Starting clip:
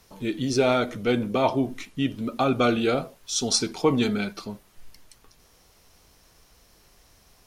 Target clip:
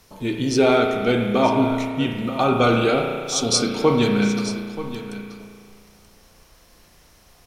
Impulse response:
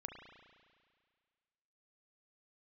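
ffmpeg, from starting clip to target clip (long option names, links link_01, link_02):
-filter_complex "[0:a]aecho=1:1:931:0.211[link_01];[1:a]atrim=start_sample=2205[link_02];[link_01][link_02]afir=irnorm=-1:irlink=0,volume=8.5dB"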